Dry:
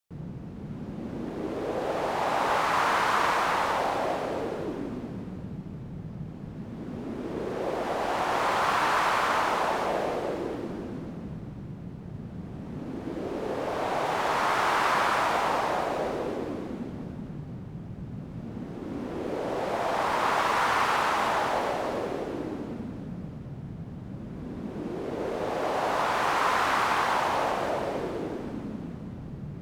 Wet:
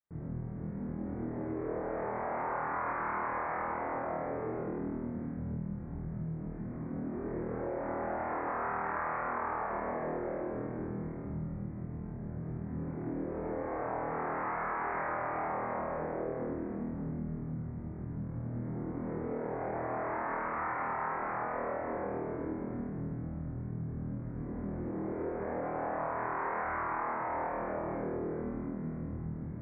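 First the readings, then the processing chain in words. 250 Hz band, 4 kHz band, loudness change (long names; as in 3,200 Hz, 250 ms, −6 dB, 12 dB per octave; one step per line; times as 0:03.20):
−3.0 dB, below −40 dB, −8.0 dB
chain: low-shelf EQ 410 Hz +5 dB
flutter between parallel walls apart 4.3 metres, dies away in 1 s
downward compressor 3 to 1, threshold −26 dBFS, peak gain reduction 9 dB
Butterworth low-pass 2,200 Hz 72 dB per octave
level −8 dB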